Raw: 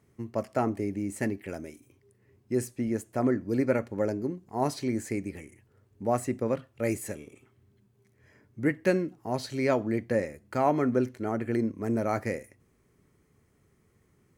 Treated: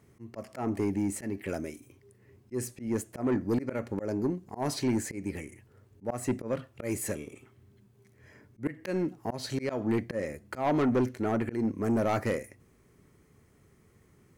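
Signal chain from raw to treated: auto swell 0.197 s; soft clip -25.5 dBFS, distortion -12 dB; gain +4.5 dB

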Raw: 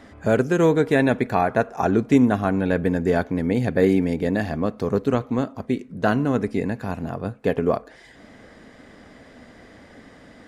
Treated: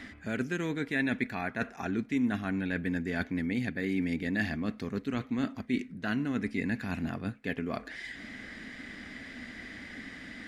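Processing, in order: reverse; compressor 6:1, threshold -28 dBFS, peak gain reduction 16 dB; reverse; graphic EQ 125/250/500/1000/2000/4000 Hz -4/+5/-9/-6/+10/+4 dB

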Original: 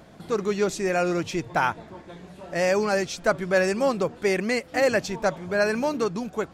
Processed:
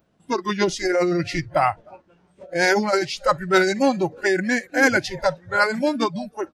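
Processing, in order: feedback echo 0.306 s, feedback 43%, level -22 dB; spectral noise reduction 21 dB; formant shift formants -3 st; gain +4.5 dB

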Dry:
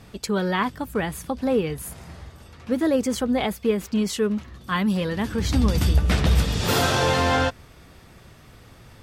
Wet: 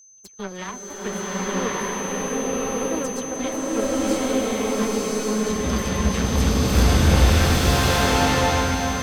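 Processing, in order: dispersion lows, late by 0.101 s, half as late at 2200 Hz; power-law curve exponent 2; whine 6200 Hz -48 dBFS; multi-head echo 0.305 s, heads all three, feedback 74%, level -17.5 dB; bloom reverb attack 1.15 s, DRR -9 dB

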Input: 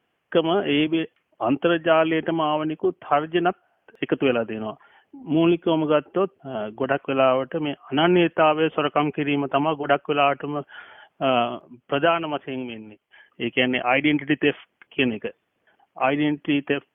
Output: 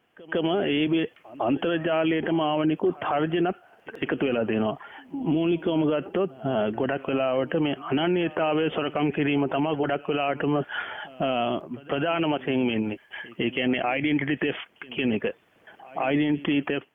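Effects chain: dynamic EQ 1100 Hz, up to -6 dB, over -37 dBFS, Q 2.1; AGC gain up to 11.5 dB; limiter -19.5 dBFS, peak gain reduction 18 dB; pre-echo 0.155 s -21 dB; gain +3.5 dB

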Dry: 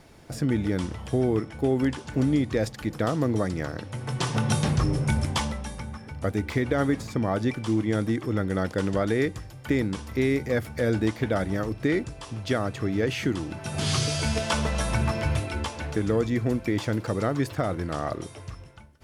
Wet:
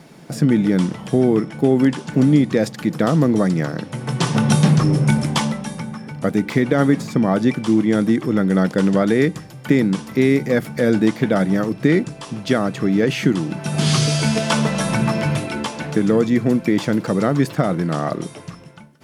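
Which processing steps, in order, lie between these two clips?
resonant low shelf 110 Hz -14 dB, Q 3; gain +6.5 dB

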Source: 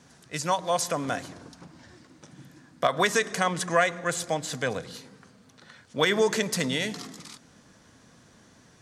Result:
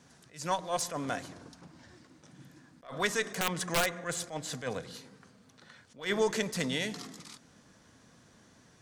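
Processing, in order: one diode to ground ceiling -15 dBFS; 3.28–4.01 wrapped overs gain 14.5 dB; attack slew limiter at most 180 dB/s; gain -4 dB

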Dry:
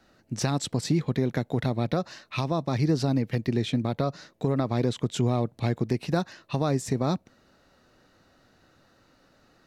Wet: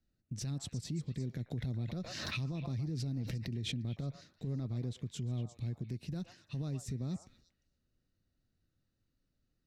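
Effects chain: gate -57 dBFS, range -14 dB; passive tone stack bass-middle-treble 10-0-1; compressor 2:1, threshold -45 dBFS, peak gain reduction 6.5 dB; limiter -42 dBFS, peak gain reduction 8 dB; delay with a stepping band-pass 0.117 s, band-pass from 910 Hz, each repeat 1.4 oct, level -4 dB; 1.51–3.82 backwards sustainer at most 33 dB/s; gain +11 dB

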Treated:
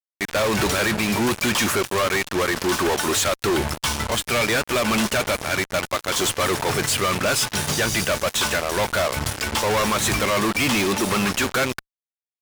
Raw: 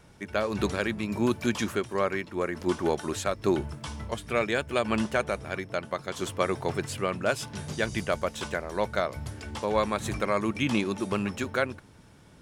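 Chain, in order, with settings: tilt shelf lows -5.5 dB, about 630 Hz; fuzz box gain 45 dB, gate -40 dBFS; gain -5 dB

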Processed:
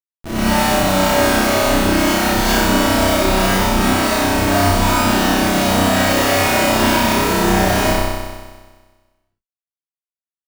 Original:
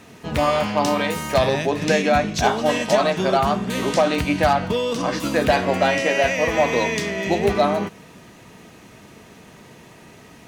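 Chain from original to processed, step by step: minimum comb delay 3.2 ms; HPF 64 Hz 24 dB/oct; high shelf 7500 Hz +6.5 dB; de-hum 83.14 Hz, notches 6; in parallel at +1.5 dB: compressor 5:1, threshold -33 dBFS, peak gain reduction 17.5 dB; on the sum: Schmitt trigger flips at -22.5 dBFS; doubler 21 ms -4 dB; on a send: flutter echo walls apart 5.4 m, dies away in 1.4 s; on the sum: non-linear reverb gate 0.14 s rising, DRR -7 dB; gain -7.5 dB

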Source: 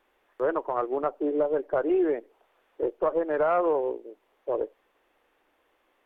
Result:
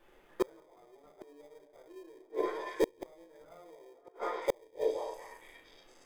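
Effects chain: notches 60/120/180/240/300/360/420/480 Hz; shoebox room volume 43 m³, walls mixed, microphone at 1.1 m; in parallel at -6.5 dB: sample-rate reducer 1400 Hz, jitter 0%; on the sum: delay with a stepping band-pass 0.232 s, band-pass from 540 Hz, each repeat 0.7 oct, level -9 dB; flipped gate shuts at -14 dBFS, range -38 dB; gain -1.5 dB

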